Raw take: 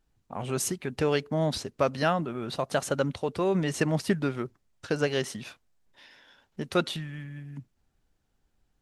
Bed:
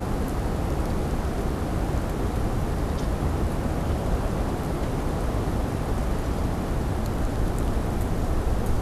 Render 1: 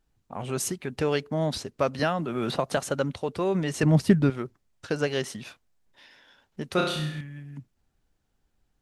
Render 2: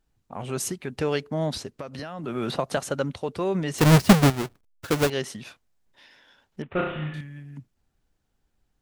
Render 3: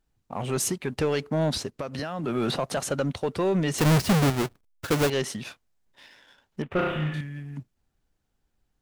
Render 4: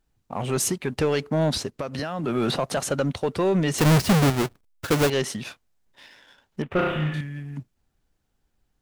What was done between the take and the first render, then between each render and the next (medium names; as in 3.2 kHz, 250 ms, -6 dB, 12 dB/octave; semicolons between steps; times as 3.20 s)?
1.99–2.77 s: three bands compressed up and down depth 100%; 3.83–4.30 s: bass shelf 290 Hz +12 dB; 6.74–7.21 s: flutter echo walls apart 5.6 m, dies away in 0.7 s
1.73–2.24 s: compression 10:1, threshold -31 dBFS; 3.78–5.10 s: square wave that keeps the level; 6.62–7.14 s: CVSD coder 16 kbps
peak limiter -17 dBFS, peak gain reduction 9.5 dB; waveshaping leveller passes 1
trim +2.5 dB